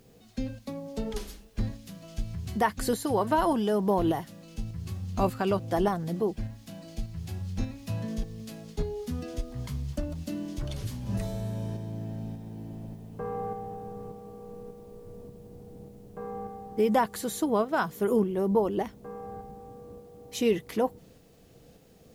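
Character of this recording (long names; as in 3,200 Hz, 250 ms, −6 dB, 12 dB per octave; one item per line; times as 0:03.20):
tremolo saw up 1.7 Hz, depth 40%
a quantiser's noise floor 12 bits, dither triangular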